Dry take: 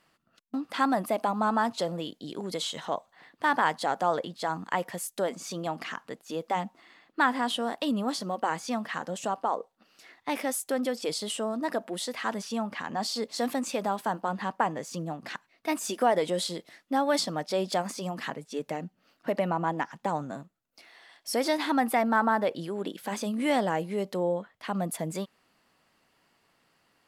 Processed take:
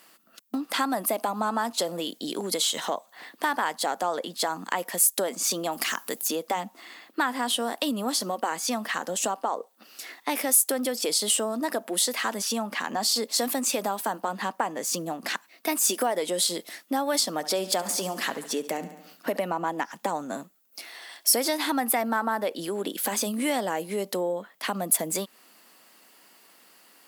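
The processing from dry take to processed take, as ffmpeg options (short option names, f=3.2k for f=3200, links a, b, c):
-filter_complex "[0:a]asplit=3[a][b][c];[a]afade=t=out:st=5.71:d=0.02[d];[b]aemphasis=mode=production:type=50kf,afade=t=in:st=5.71:d=0.02,afade=t=out:st=6.27:d=0.02[e];[c]afade=t=in:st=6.27:d=0.02[f];[d][e][f]amix=inputs=3:normalize=0,asettb=1/sr,asplit=3[g][h][i];[g]atrim=end=17.324[j];[h]atrim=start=17.32:end=19.37,asetpts=PTS-STARTPTS,afade=t=in:d=0.004:c=qsin,afade=t=out:st=2.046:d=0.004:c=qsin,aecho=1:1:70|140|210|280|350:0.178|0.096|0.0519|0.028|0.0151,atrim=end_sample=90405[k];[i]atrim=start=19.366[l];[j][k]acrossfade=d=0.004:c1=hsin:c2=qsin[m];[m][l]acrossfade=d=0.004:c1=qsin:c2=hsin,acompressor=threshold=-37dB:ratio=2.5,highpass=f=210:w=0.5412,highpass=f=210:w=1.3066,aemphasis=mode=production:type=50fm,volume=9dB"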